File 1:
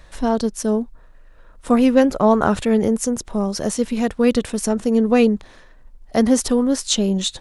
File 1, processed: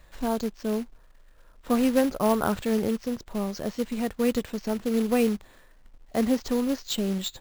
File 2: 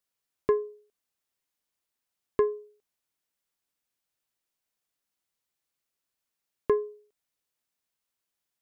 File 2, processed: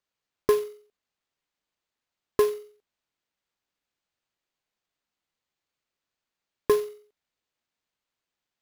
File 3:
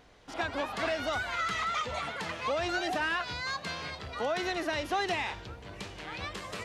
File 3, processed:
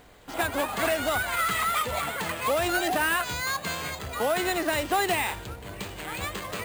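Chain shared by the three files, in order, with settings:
careless resampling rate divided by 4×, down filtered, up hold; short-mantissa float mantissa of 2-bit; match loudness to -27 LUFS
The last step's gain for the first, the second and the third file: -8.0, +3.0, +6.0 dB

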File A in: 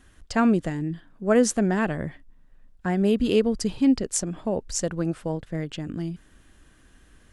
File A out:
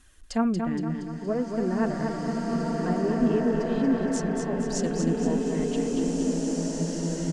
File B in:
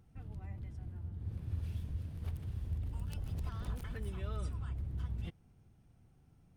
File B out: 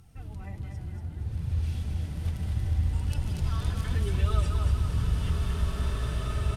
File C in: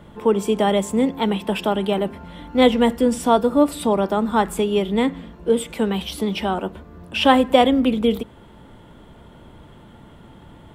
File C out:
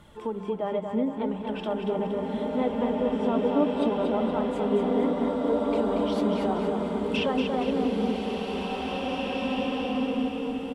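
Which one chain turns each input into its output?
compressor, threshold -18 dBFS; harmonic-percussive split harmonic +8 dB; treble ducked by the level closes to 1300 Hz, closed at -14 dBFS; high shelf 2800 Hz +10 dB; notches 50/100/150/200 Hz; flange 0.7 Hz, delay 0.7 ms, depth 6.5 ms, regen +43%; feedback echo 0.234 s, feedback 51%, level -5.5 dB; short-mantissa float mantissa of 8-bit; bloom reverb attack 2.37 s, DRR -1.5 dB; normalise peaks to -12 dBFS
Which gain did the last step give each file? -7.0, +6.0, -9.5 dB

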